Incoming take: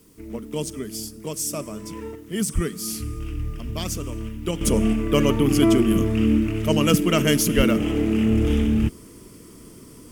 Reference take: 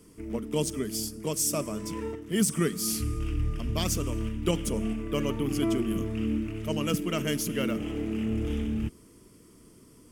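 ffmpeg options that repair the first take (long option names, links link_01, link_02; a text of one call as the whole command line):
ffmpeg -i in.wav -filter_complex "[0:a]asplit=3[link_01][link_02][link_03];[link_01]afade=type=out:start_time=2.54:duration=0.02[link_04];[link_02]highpass=frequency=140:width=0.5412,highpass=frequency=140:width=1.3066,afade=type=in:start_time=2.54:duration=0.02,afade=type=out:start_time=2.66:duration=0.02[link_05];[link_03]afade=type=in:start_time=2.66:duration=0.02[link_06];[link_04][link_05][link_06]amix=inputs=3:normalize=0,asplit=3[link_07][link_08][link_09];[link_07]afade=type=out:start_time=7.56:duration=0.02[link_10];[link_08]highpass=frequency=140:width=0.5412,highpass=frequency=140:width=1.3066,afade=type=in:start_time=7.56:duration=0.02,afade=type=out:start_time=7.68:duration=0.02[link_11];[link_09]afade=type=in:start_time=7.68:duration=0.02[link_12];[link_10][link_11][link_12]amix=inputs=3:normalize=0,agate=range=-21dB:threshold=-36dB,asetnsamples=nb_out_samples=441:pad=0,asendcmd='4.61 volume volume -10dB',volume=0dB" out.wav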